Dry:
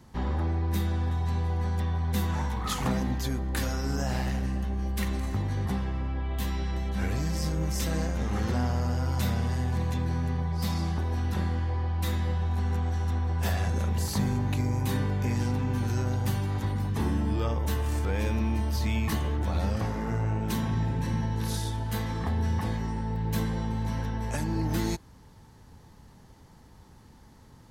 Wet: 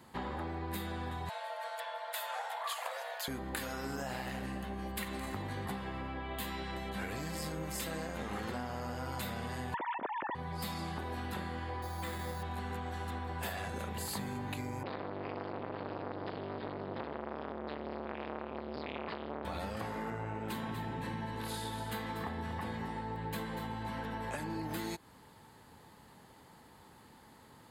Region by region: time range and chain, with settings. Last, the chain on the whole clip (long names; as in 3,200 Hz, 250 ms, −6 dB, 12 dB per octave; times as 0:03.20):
0:01.29–0:03.28: frequency shifter −110 Hz + linear-phase brick-wall high-pass 440 Hz
0:09.74–0:10.35: three sine waves on the formant tracks + low-pass filter 2,700 Hz + compressor whose output falls as the input rises −27 dBFS, ratio −0.5
0:11.82–0:12.43: mains-hum notches 50/100/150/200/250/300/350/400 Hz + bad sample-rate conversion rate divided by 8×, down filtered, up hold
0:14.83–0:19.45: linear-phase brick-wall low-pass 5,100 Hz + saturating transformer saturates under 870 Hz
0:20.10–0:24.50: high-shelf EQ 5,100 Hz −6.5 dB + single-tap delay 241 ms −9.5 dB
whole clip: high-pass filter 440 Hz 6 dB per octave; parametric band 5,800 Hz −15 dB 0.28 octaves; downward compressor, threshold −38 dBFS; level +2.5 dB